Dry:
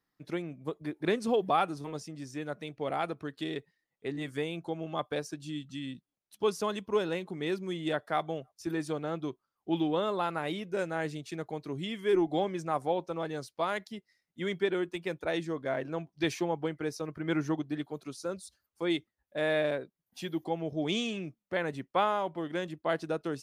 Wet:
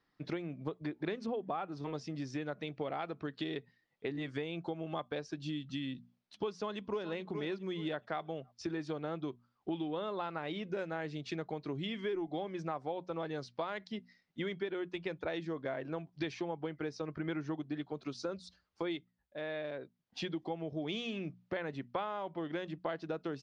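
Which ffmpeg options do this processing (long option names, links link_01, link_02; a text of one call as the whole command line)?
ffmpeg -i in.wav -filter_complex "[0:a]asettb=1/sr,asplit=3[link_01][link_02][link_03];[link_01]atrim=end=1.264[link_04];[link_02]atrim=start=1.26:end=1.72,asetpts=PTS-STARTPTS,afade=type=in:duration=0.004:curve=qsin,afade=type=out:start_time=0.456:duration=0.004:curve=qsin,equalizer=frequency=6300:width=0.58:gain=-12.5[link_05];[link_03]atrim=start=1.716[link_06];[link_04][link_05]acrossfade=duration=0.004:curve1=hsin:curve2=qsin[link_07];[link_07][link_06]acrossfade=duration=0.004:curve1=qsin:curve2=hsin,asplit=2[link_08][link_09];[link_09]afade=type=in:start_time=6.51:duration=0.01,afade=type=out:start_time=7.06:duration=0.01,aecho=0:1:420|840|1260:0.211349|0.0634047|0.0190214[link_10];[link_08][link_10]amix=inputs=2:normalize=0,asplit=3[link_11][link_12][link_13];[link_11]atrim=end=19.39,asetpts=PTS-STARTPTS,afade=type=out:start_time=18.89:duration=0.5:silence=0.188365[link_14];[link_12]atrim=start=19.39:end=19.74,asetpts=PTS-STARTPTS,volume=-14.5dB[link_15];[link_13]atrim=start=19.74,asetpts=PTS-STARTPTS,afade=type=in:duration=0.5:silence=0.188365[link_16];[link_14][link_15][link_16]concat=n=3:v=0:a=1,lowpass=frequency=5100:width=0.5412,lowpass=frequency=5100:width=1.3066,bandreject=frequency=60:width_type=h:width=6,bandreject=frequency=120:width_type=h:width=6,bandreject=frequency=180:width_type=h:width=6,bandreject=frequency=240:width_type=h:width=6,acompressor=threshold=-41dB:ratio=6,volume=5.5dB" out.wav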